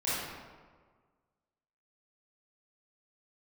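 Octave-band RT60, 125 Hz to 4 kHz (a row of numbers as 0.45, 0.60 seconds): 1.7, 1.6, 1.6, 1.5, 1.2, 0.90 seconds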